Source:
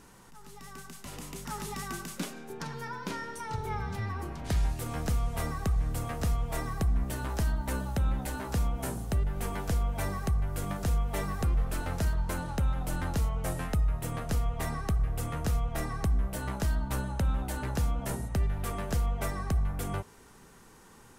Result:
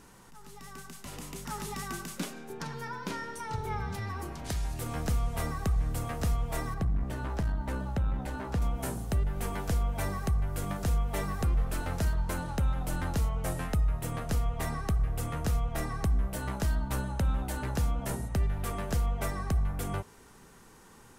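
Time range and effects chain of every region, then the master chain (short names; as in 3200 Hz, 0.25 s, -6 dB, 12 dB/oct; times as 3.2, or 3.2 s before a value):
3.94–4.74 tone controls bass -2 dB, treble +5 dB + compressor 2:1, threshold -31 dBFS
6.74–8.62 LPF 2500 Hz 6 dB/oct + core saturation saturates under 63 Hz
whole clip: dry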